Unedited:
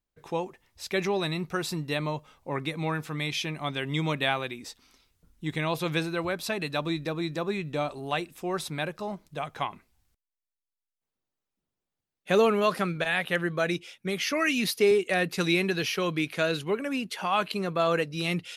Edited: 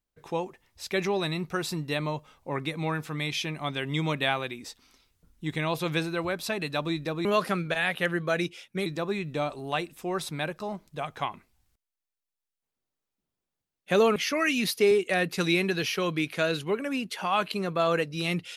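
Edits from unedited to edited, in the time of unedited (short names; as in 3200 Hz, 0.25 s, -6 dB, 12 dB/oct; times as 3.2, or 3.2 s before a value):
12.55–14.16 move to 7.25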